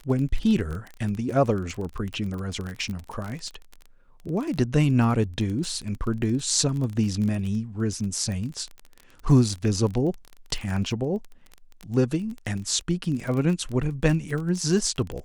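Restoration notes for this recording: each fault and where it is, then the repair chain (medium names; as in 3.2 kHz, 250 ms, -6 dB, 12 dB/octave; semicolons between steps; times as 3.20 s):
crackle 27 per s -29 dBFS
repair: de-click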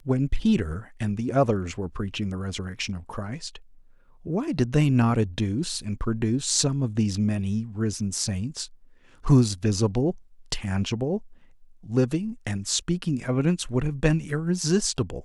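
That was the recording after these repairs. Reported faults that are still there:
nothing left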